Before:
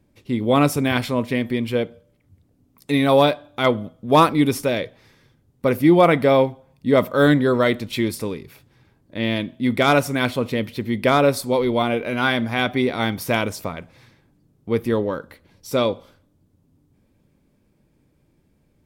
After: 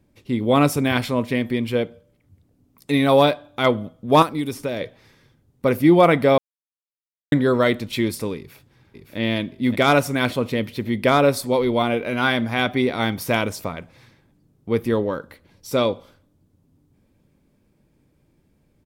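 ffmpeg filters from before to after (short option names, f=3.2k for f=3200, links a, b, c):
-filter_complex "[0:a]asettb=1/sr,asplit=3[a][b][c];[a]atrim=end=4.224[d];[b]atrim=start=4.22:end=4.81,asetpts=PTS-STARTPTS,afade=t=in:d=0.004:c=qsin,afade=t=out:st=0.586:d=0.004:c=qsin,acrossover=split=1800|4400[e][f][g];[e]acompressor=threshold=-23dB:ratio=4[h];[f]acompressor=threshold=-42dB:ratio=4[i];[g]acompressor=threshold=-40dB:ratio=4[j];[h][i][j]amix=inputs=3:normalize=0[k];[c]atrim=start=4.806[l];[d][k]acrossfade=d=0.004:c1=hsin:c2=qsin[m];[m][l]acrossfade=d=0.004:c1=qsin:c2=hsin,asplit=2[n][o];[o]afade=t=in:st=8.37:d=0.01,afade=t=out:st=9.18:d=0.01,aecho=0:1:570|1140|1710|2280|2850|3420|3990|4560|5130:0.595662|0.357397|0.214438|0.128663|0.0771978|0.0463187|0.0277912|0.0166747|0.0100048[p];[n][p]amix=inputs=2:normalize=0,asplit=3[q][r][s];[q]atrim=end=6.38,asetpts=PTS-STARTPTS,afade=t=out:st=6.376:d=0.004:c=hsin[t];[r]atrim=start=6.38:end=7.32,asetpts=PTS-STARTPTS,volume=0[u];[s]atrim=start=7.32,asetpts=PTS-STARTPTS,afade=t=in:d=0.004:c=hsin[v];[t][u][v]concat=n=3:v=0:a=1"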